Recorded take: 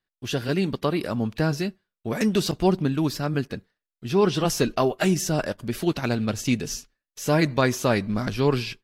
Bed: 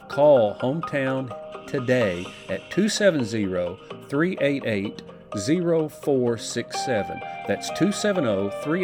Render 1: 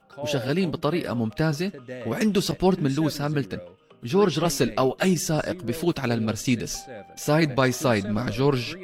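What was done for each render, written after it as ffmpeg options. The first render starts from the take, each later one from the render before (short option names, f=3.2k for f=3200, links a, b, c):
-filter_complex "[1:a]volume=-16dB[a];[0:a][a]amix=inputs=2:normalize=0"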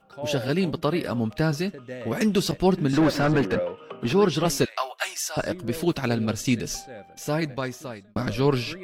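-filter_complex "[0:a]asettb=1/sr,asplit=3[a][b][c];[a]atrim=end=2.934[d];[b]atrim=start=2.93:end=4.13,asetpts=PTS-STARTPTS,afade=t=in:d=0.004:c=qsin,afade=t=out:st=1.196:d=0.004:c=qsin,asplit=2[e][f];[f]highpass=f=720:p=1,volume=27dB,asoftclip=type=tanh:threshold=-11dB[g];[e][g]amix=inputs=2:normalize=0,lowpass=f=1k:p=1,volume=-6dB[h];[c]atrim=start=4.126[i];[d][h]acrossfade=d=0.004:c1=hsin:c2=qsin[j];[j][i]acrossfade=d=0.004:c1=qsin:c2=hsin,asettb=1/sr,asplit=3[k][l][m];[k]atrim=end=4.654[n];[l]atrim=start=4.65:end=5.37,asetpts=PTS-STARTPTS,afade=t=in:d=0.004:c=qsin,afade=t=out:st=0.716:d=0.004:c=qsin,highpass=f=790:w=0.5412,highpass=f=790:w=1.3066[o];[m]atrim=start=5.366[p];[n][o]acrossfade=d=0.004:c1=hsin:c2=qsin[q];[q][p]acrossfade=d=0.004:c1=qsin:c2=hsin,asplit=2[r][s];[r]atrim=end=8.16,asetpts=PTS-STARTPTS,afade=t=out:st=6.72:d=1.44[t];[s]atrim=start=8.16,asetpts=PTS-STARTPTS,afade=t=in:d=0.004:c=hsin[u];[t][u]concat=n=2:v=0:a=1"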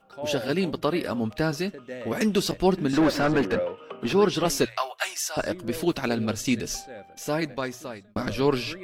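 -af "equalizer=f=140:w=2:g=-6.5,bandreject=f=60:t=h:w=6,bandreject=f=120:t=h:w=6"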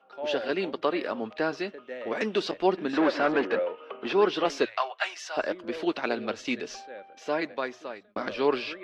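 -filter_complex "[0:a]lowpass=7.9k,acrossover=split=280 4400:gain=0.0631 1 0.0794[a][b][c];[a][b][c]amix=inputs=3:normalize=0"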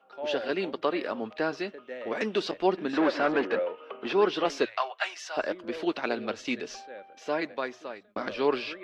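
-af "volume=-1dB"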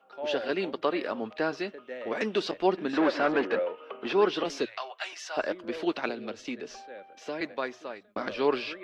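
-filter_complex "[0:a]asettb=1/sr,asplit=3[a][b][c];[a]atrim=end=4.434[d];[b]atrim=start=4.43:end=5.13,asetpts=PTS-STARTPTS,afade=t=in:d=0.004:c=qsin,afade=t=out:st=0.696:d=0.004:c=qsin,acrossover=split=410|3000[e][f][g];[f]acompressor=threshold=-40dB:ratio=2:attack=3.2:release=140:knee=2.83:detection=peak[h];[e][h][g]amix=inputs=3:normalize=0[i];[c]atrim=start=5.126[j];[d][i]acrossfade=d=0.004:c1=hsin:c2=qsin[k];[k][j]acrossfade=d=0.004:c1=qsin:c2=hsin,asettb=1/sr,asplit=3[l][m][n];[l]atrim=end=6.094[o];[m]atrim=start=6.09:end=7.41,asetpts=PTS-STARTPTS,afade=t=in:d=0.004:c=qsin,afade=t=out:st=1.316:d=0.004:c=qsin,acrossover=split=170|560|1900[p][q][r][s];[p]acompressor=threshold=-54dB:ratio=3[t];[q]acompressor=threshold=-35dB:ratio=3[u];[r]acompressor=threshold=-46dB:ratio=3[v];[s]acompressor=threshold=-46dB:ratio=3[w];[t][u][v][w]amix=inputs=4:normalize=0[x];[n]atrim=start=7.406[y];[o][x]acrossfade=d=0.004:c1=hsin:c2=qsin[z];[z][y]acrossfade=d=0.004:c1=qsin:c2=hsin"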